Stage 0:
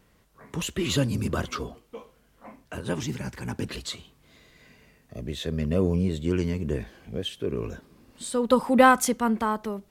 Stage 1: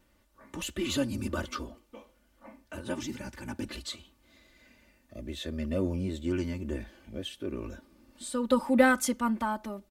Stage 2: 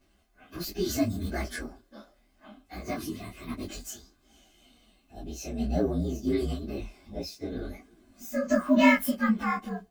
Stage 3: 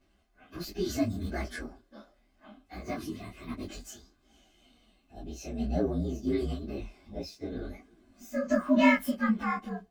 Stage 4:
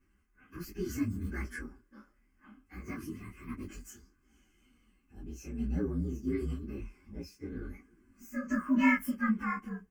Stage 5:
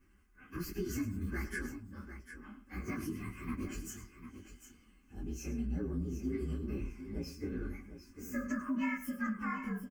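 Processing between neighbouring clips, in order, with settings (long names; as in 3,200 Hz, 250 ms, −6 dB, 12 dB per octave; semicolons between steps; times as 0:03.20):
comb filter 3.4 ms, depth 77%; level −6.5 dB
partials spread apart or drawn together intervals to 119%; micro pitch shift up and down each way 48 cents; level +8 dB
high-shelf EQ 7,400 Hz −9 dB; level −2 dB
phaser with its sweep stopped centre 1,600 Hz, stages 4; level −1 dB
downward compressor 5 to 1, threshold −38 dBFS, peak gain reduction 16 dB; on a send: multi-tap delay 101/750 ms −13.5/−11 dB; on the sum: level +4 dB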